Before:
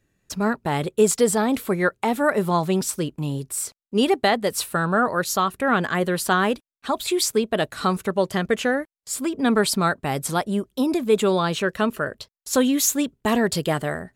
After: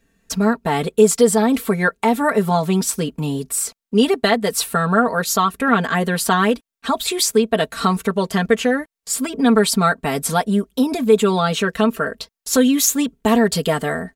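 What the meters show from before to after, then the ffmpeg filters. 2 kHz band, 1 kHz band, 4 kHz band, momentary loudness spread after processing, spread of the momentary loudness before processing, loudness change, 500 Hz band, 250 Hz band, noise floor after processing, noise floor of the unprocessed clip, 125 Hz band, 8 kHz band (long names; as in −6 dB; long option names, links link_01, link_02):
+3.0 dB, +4.0 dB, +4.5 dB, 7 LU, 8 LU, +4.5 dB, +4.0 dB, +5.0 dB, −82 dBFS, −83 dBFS, +4.0 dB, +4.5 dB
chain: -filter_complex "[0:a]aecho=1:1:4.4:0.83,asplit=2[link_01][link_02];[link_02]acompressor=threshold=-25dB:ratio=6,volume=0dB[link_03];[link_01][link_03]amix=inputs=2:normalize=0,volume=-1dB"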